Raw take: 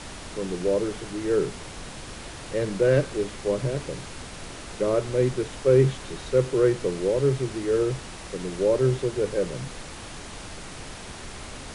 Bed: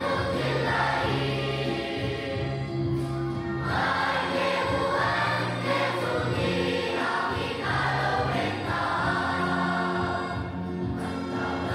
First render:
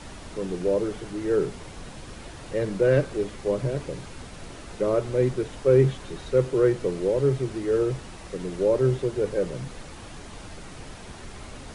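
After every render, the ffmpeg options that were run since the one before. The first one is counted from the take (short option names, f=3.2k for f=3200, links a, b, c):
-af "afftdn=nr=6:nf=-40"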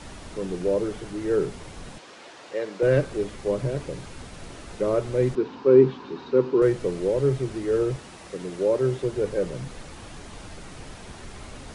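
-filter_complex "[0:a]asettb=1/sr,asplit=3[a][b][c];[a]atrim=end=1.984[d];[b]atrim=start=1.98:end=2.83,asetpts=PTS-STARTPTS,afade=t=in:d=0.004:c=qsin,afade=t=out:st=0.846:d=0.004:c=qsin,highpass=410,lowpass=6.4k[e];[c]atrim=start=2.826[f];[d][e]acrossfade=d=0.004:c1=hsin:c2=qsin[g];[g][f]acrossfade=d=0.004:c1=qsin:c2=hsin,asettb=1/sr,asplit=3[h][i][j];[h]atrim=end=5.354[k];[i]atrim=start=5.35:end=6.62,asetpts=PTS-STARTPTS,afade=t=in:d=0.004:c=qsin,afade=t=out:st=1.266:d=0.004:c=qsin,highpass=190,equalizer=f=250:t=q:w=4:g=10,equalizer=f=390:t=q:w=4:g=5,equalizer=f=620:t=q:w=4:g=-10,equalizer=f=970:t=q:w=4:g=9,equalizer=f=2k:t=q:w=4:g=-7,equalizer=f=3.3k:t=q:w=4:g=-5,lowpass=f=4.5k:w=0.5412,lowpass=f=4.5k:w=1.3066[l];[j]atrim=start=6.616[m];[k][l]acrossfade=d=0.004:c1=hsin:c2=qsin[n];[n][m]acrossfade=d=0.004:c1=qsin:c2=hsin,asettb=1/sr,asplit=3[o][p][q];[o]atrim=end=7.964[r];[p]atrim=start=7.96:end=9.04,asetpts=PTS-STARTPTS,afade=t=in:d=0.004:c=qsin,afade=t=out:st=1.076:d=0.004:c=qsin,highpass=f=170:p=1[s];[q]atrim=start=9.036[t];[r][s]acrossfade=d=0.004:c1=hsin:c2=qsin[u];[u][t]acrossfade=d=0.004:c1=qsin:c2=hsin"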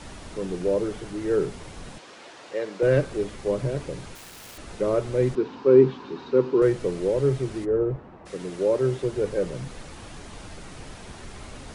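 -filter_complex "[0:a]asettb=1/sr,asplit=3[a][b][c];[a]atrim=end=4.154[d];[b]atrim=start=4.15:end=4.58,asetpts=PTS-STARTPTS,afade=t=in:d=0.004:c=qsin,afade=t=out:st=0.426:d=0.004:c=qsin,aeval=exprs='(mod(89.1*val(0)+1,2)-1)/89.1':c=same[e];[c]atrim=start=4.576[f];[d][e]acrossfade=d=0.004:c1=hsin:c2=qsin[g];[g][f]acrossfade=d=0.004:c1=qsin:c2=hsin,asplit=3[h][i][j];[h]afade=t=out:st=7.64:d=0.02[k];[i]lowpass=1.1k,afade=t=in:st=7.64:d=0.02,afade=t=out:st=8.25:d=0.02[l];[j]afade=t=in:st=8.25:d=0.02[m];[k][l][m]amix=inputs=3:normalize=0"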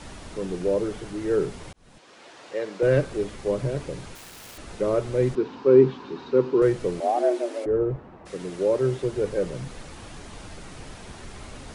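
-filter_complex "[0:a]asettb=1/sr,asplit=3[a][b][c];[a]atrim=end=7.004[d];[b]atrim=start=7:end=7.66,asetpts=PTS-STARTPTS,afade=t=in:d=0.004:c=qsin,afade=t=out:st=0.656:d=0.004:c=qsin,afreqshift=230[e];[c]atrim=start=7.656[f];[d][e]acrossfade=d=0.004:c1=hsin:c2=qsin[g];[g][f]acrossfade=d=0.004:c1=qsin:c2=hsin,asplit=2[h][i];[h]atrim=end=1.73,asetpts=PTS-STARTPTS,afade=t=out:st=1.726:d=0.004:c=hsin[j];[i]atrim=start=1.73,asetpts=PTS-STARTPTS,afade=t=in:d=1:c=qsin[k];[j][k]concat=n=2:v=0:a=1"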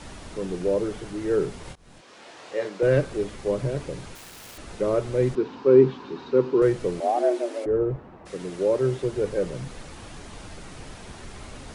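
-filter_complex "[0:a]asettb=1/sr,asplit=3[a][b][c];[a]atrim=end=1.634[d];[b]atrim=start=1.63:end=2.69,asetpts=PTS-STARTPTS,afade=t=in:d=0.004:c=qsin,afade=t=out:st=1.056:d=0.004:c=qsin,asplit=2[e][f];[f]adelay=25,volume=-3dB[g];[e][g]amix=inputs=2:normalize=0,atrim=end_sample=46746[h];[c]atrim=start=2.686[i];[d][h]acrossfade=d=0.004:c1=hsin:c2=qsin[j];[j][i]acrossfade=d=0.004:c1=qsin:c2=hsin"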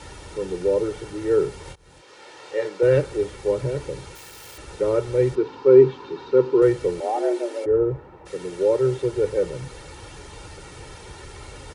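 -af "highpass=41,aecho=1:1:2.2:0.65"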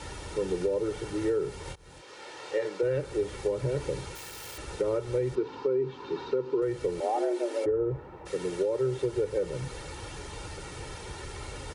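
-af "alimiter=limit=-15dB:level=0:latency=1:release=371,acompressor=threshold=-24dB:ratio=6"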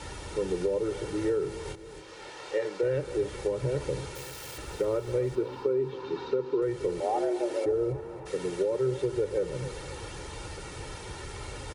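-af "aecho=1:1:274|548|822|1096|1370:0.188|0.0979|0.0509|0.0265|0.0138"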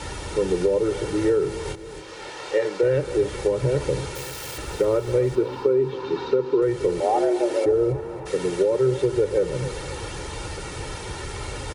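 -af "volume=7.5dB"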